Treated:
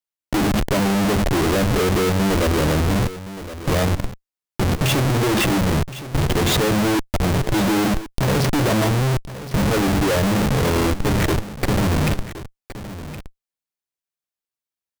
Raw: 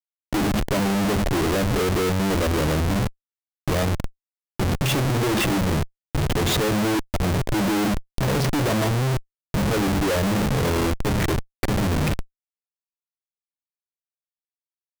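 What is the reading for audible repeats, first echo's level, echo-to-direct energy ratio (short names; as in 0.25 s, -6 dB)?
1, -14.0 dB, -14.0 dB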